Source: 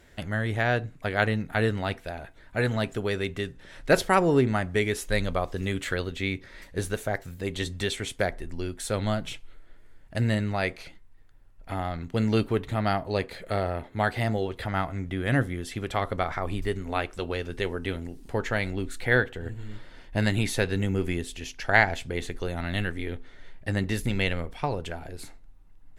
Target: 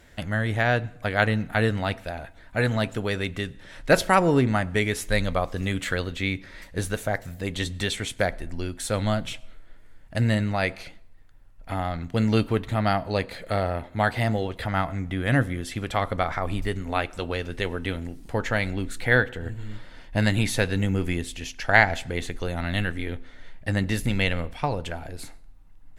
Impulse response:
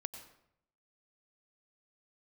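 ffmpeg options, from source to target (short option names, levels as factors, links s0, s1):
-filter_complex "[0:a]equalizer=f=390:w=5.1:g=-6,asplit=2[s0][s1];[1:a]atrim=start_sample=2205[s2];[s1][s2]afir=irnorm=-1:irlink=0,volume=0.224[s3];[s0][s3]amix=inputs=2:normalize=0,volume=1.19"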